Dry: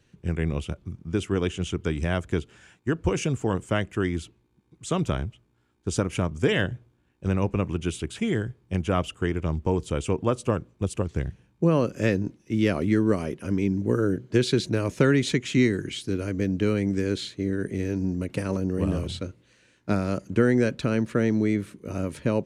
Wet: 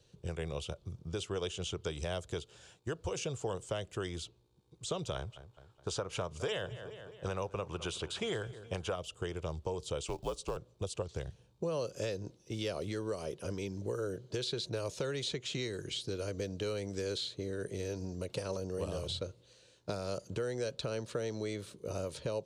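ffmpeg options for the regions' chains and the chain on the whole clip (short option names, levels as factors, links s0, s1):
-filter_complex "[0:a]asettb=1/sr,asplit=3[s0][s1][s2];[s0]atrim=end=5.154[s3];[s1]atrim=start=5.15:end=8.96,asetpts=PTS-STARTPTS,afade=t=in:d=0.004:c=qsin,afade=t=out:st=3.806:d=0.004:c=qsin,equalizer=f=1200:w=0.67:g=9.5,aecho=1:1:210|420|630|840:0.0891|0.0455|0.0232|0.0118,atrim=end_sample=168021[s4];[s2]atrim=start=8.956[s5];[s3][s4]acrossfade=d=0.004:c1=hsin:c2=qsin[s6];[s6][s5]acrossfade=d=0.004:c1=qsin:c2=hsin,asettb=1/sr,asplit=3[s7][s8][s9];[s7]atrim=end=10.034[s10];[s8]atrim=start=10.03:end=10.57,asetpts=PTS-STARTPTS,afade=t=in:d=0.004:c=qsin,afade=t=out:st=0.536:d=0.004:c=qsin,lowshelf=f=490:g=-2,acrusher=bits=8:mode=log:mix=0:aa=0.000001,afreqshift=-70[s11];[s9]atrim=start=10.566[s12];[s10][s11]acrossfade=d=0.004:c1=hsin:c2=qsin[s13];[s13][s12]acrossfade=d=0.004:c1=qsin:c2=hsin,alimiter=limit=0.2:level=0:latency=1:release=322,equalizer=f=125:t=o:w=1:g=3,equalizer=f=250:t=o:w=1:g=-10,equalizer=f=500:t=o:w=1:g=9,equalizer=f=2000:t=o:w=1:g=-10,equalizer=f=4000:t=o:w=1:g=9,equalizer=f=8000:t=o:w=1:g=3,acrossover=split=660|3200|7500[s14][s15][s16][s17];[s14]acompressor=threshold=0.02:ratio=4[s18];[s15]acompressor=threshold=0.0158:ratio=4[s19];[s16]acompressor=threshold=0.0112:ratio=4[s20];[s17]acompressor=threshold=0.00224:ratio=4[s21];[s18][s19][s20][s21]amix=inputs=4:normalize=0,volume=0.631"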